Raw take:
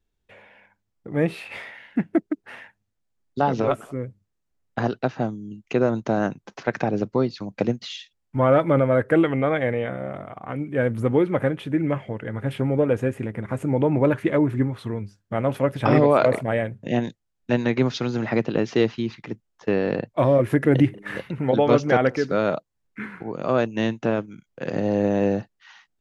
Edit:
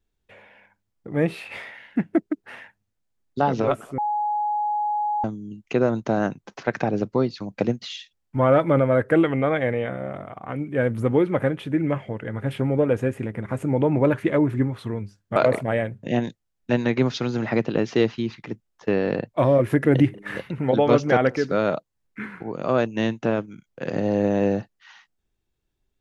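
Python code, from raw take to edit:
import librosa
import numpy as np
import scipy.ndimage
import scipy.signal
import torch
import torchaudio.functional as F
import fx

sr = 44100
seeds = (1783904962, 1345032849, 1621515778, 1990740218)

y = fx.edit(x, sr, fx.bleep(start_s=3.98, length_s=1.26, hz=837.0, db=-21.0),
    fx.cut(start_s=15.36, length_s=0.8), tone=tone)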